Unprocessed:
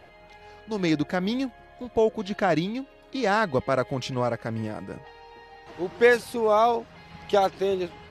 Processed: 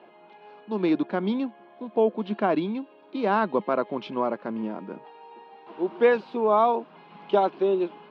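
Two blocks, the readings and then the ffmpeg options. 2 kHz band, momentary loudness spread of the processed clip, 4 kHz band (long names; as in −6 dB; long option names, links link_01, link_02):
−5.5 dB, 13 LU, −7.0 dB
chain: -af "highpass=frequency=200:width=0.5412,highpass=frequency=200:width=1.3066,equalizer=frequency=210:width_type=q:width=4:gain=7,equalizer=frequency=360:width_type=q:width=4:gain=6,equalizer=frequency=1000:width_type=q:width=4:gain=7,equalizer=frequency=1900:width_type=q:width=4:gain=-9,lowpass=frequency=3300:width=0.5412,lowpass=frequency=3300:width=1.3066,volume=-2dB"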